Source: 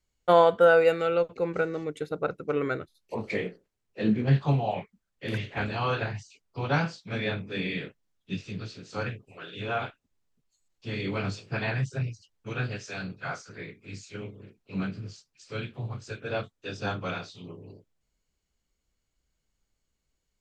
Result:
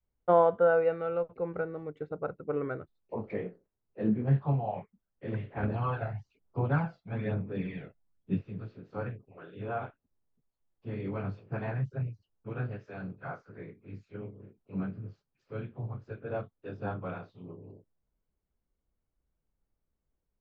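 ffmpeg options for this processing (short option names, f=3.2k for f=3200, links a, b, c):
-filter_complex "[0:a]asettb=1/sr,asplit=3[a][b][c];[a]atrim=end=5.634[d];[b]atrim=start=5.63:end=8.42,asetpts=PTS-STARTPTS,afade=t=in:d=0.004:c=qsin,afade=t=out:st=2.786:d=0.004:c=qsin,aphaser=in_gain=1:out_gain=1:delay=1.5:decay=0.5:speed=1.1:type=sinusoidal[e];[c]atrim=start=8.416[f];[d][e]acrossfade=d=0.004:c1=hsin:c2=qsin[g];[g][f]acrossfade=d=0.004:c1=qsin:c2=hsin,lowpass=1.1k,adynamicequalizer=threshold=0.0112:dfrequency=320:dqfactor=0.91:tfrequency=320:tqfactor=0.91:attack=5:release=100:ratio=0.375:range=3.5:mode=cutabove:tftype=bell,volume=-2.5dB"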